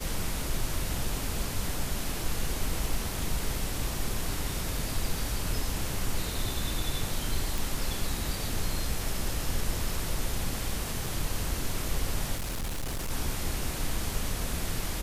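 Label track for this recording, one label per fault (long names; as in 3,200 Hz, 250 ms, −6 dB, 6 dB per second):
7.580000	7.580000	click
11.060000	11.060000	drop-out 2.8 ms
12.360000	13.110000	clipping −29 dBFS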